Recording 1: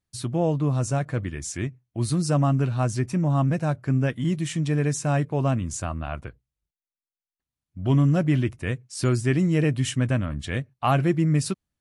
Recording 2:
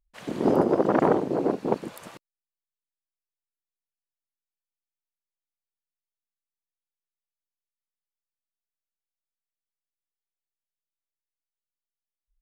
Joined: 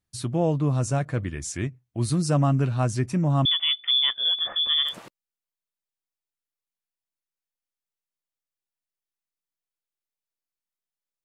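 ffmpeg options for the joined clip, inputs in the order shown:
-filter_complex "[0:a]asettb=1/sr,asplit=3[a][b][c];[a]atrim=end=3.454[d];[b]atrim=start=3.45:end=4.96,asetpts=PTS-STARTPTS,afade=t=in:d=0.004:c=qsin,afade=t=out:st=1.506:d=0.004:c=qsin,lowpass=f=3.1k:t=q:w=0.5098,lowpass=f=3.1k:t=q:w=0.6013,lowpass=f=3.1k:t=q:w=0.9,lowpass=f=3.1k:t=q:w=2.563,afreqshift=-3600[e];[c]atrim=start=4.956[f];[d][e]acrossfade=d=0.004:c1=hsin:c2=qsin[g];[g][f]acrossfade=d=0.004:c1=qsin:c2=hsin,apad=whole_dur=11.24,atrim=end=11.24,atrim=end=4.96,asetpts=PTS-STARTPTS[h];[1:a]atrim=start=1.89:end=8.33,asetpts=PTS-STARTPTS[i];[h][i]acrossfade=d=0.16:c1=tri:c2=tri"

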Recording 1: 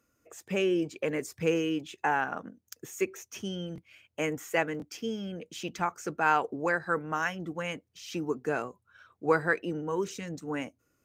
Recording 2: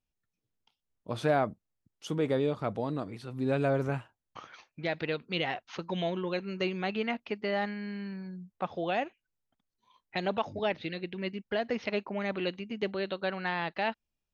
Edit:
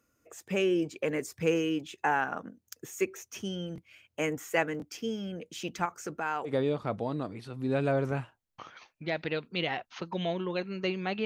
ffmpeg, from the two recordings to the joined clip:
-filter_complex "[0:a]asettb=1/sr,asplit=3[a][b][c];[a]atrim=end=5.854[d];[b]atrim=start=5.85:end=6.54,asetpts=PTS-STARTPTS,afade=t=in:d=0.004:c=qsin,afade=t=out:st=0.686:d=0.004:c=qsin,acompressor=threshold=-33dB:ratio=2:attack=3.2:release=140:knee=1:detection=peak[e];[c]atrim=start=6.536[f];[d][e]acrossfade=d=0.004:c1=hsin:c2=qsin[g];[g][f]acrossfade=d=0.004:c1=qsin:c2=hsin,apad=whole_dur=11.25,atrim=end=11.25,atrim=end=6.54,asetpts=PTS-STARTPTS[h];[1:a]atrim=start=2.21:end=7.02,asetpts=PTS-STARTPTS[i];[h][i]acrossfade=d=0.1:c1=tri:c2=tri"

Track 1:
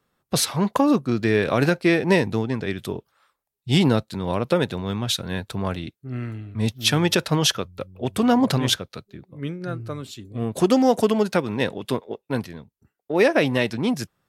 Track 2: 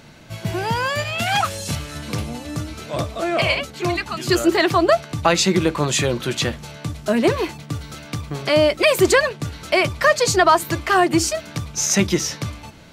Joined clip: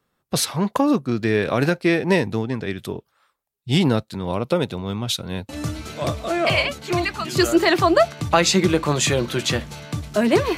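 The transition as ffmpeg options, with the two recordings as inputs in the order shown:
-filter_complex "[0:a]asettb=1/sr,asplit=3[a][b][c];[a]atrim=end=4.274[d];[b]atrim=start=4.27:end=5.49,asetpts=PTS-STARTPTS,afade=t=in:d=0.004:c=qsin,afade=t=out:st=1.216:d=0.004:c=qsin,equalizer=f=1.7k:t=o:w=0.22:g=-9.5[e];[c]atrim=start=5.486[f];[d][e]acrossfade=d=0.004:c1=hsin:c2=qsin[g];[g][f]acrossfade=d=0.004:c1=qsin:c2=hsin,apad=whole_dur=10.57,atrim=end=10.57,atrim=end=5.492[h];[1:a]atrim=start=2.408:end=7.49[i];[h][i]acrossfade=d=0.004:c1=hsin:c2=hsin"

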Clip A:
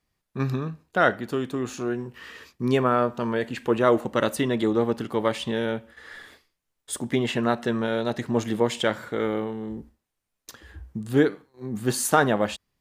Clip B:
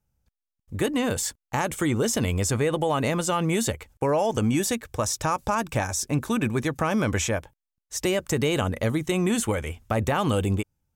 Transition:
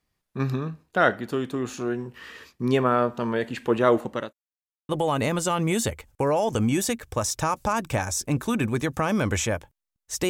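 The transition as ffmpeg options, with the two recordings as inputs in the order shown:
-filter_complex "[0:a]apad=whole_dur=10.29,atrim=end=10.29,asplit=2[a][b];[a]atrim=end=4.33,asetpts=PTS-STARTPTS,afade=t=out:st=3.88:d=0.45:c=qsin[c];[b]atrim=start=4.33:end=4.89,asetpts=PTS-STARTPTS,volume=0[d];[1:a]atrim=start=2.71:end=8.11,asetpts=PTS-STARTPTS,afade=t=in:d=0.004:c=hsin[e];[c][d][e]concat=n=3:v=0:a=1"

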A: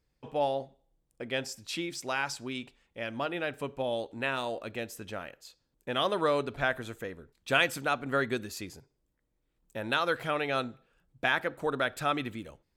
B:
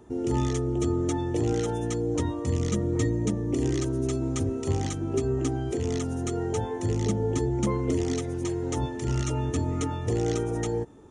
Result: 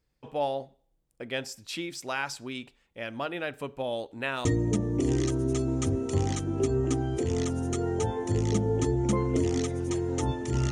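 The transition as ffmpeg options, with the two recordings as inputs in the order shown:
-filter_complex "[0:a]apad=whole_dur=10.71,atrim=end=10.71,atrim=end=4.452[a];[1:a]atrim=start=2.988:end=9.25[b];[a][b]acrossfade=d=0.004:c1=hsin:c2=hsin"

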